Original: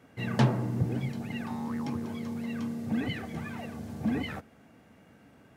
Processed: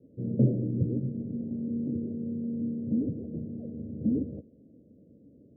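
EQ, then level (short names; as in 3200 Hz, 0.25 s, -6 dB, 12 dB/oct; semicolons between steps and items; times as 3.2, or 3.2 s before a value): steep low-pass 570 Hz 72 dB/oct; bell 290 Hz +4 dB 0.77 oct; 0.0 dB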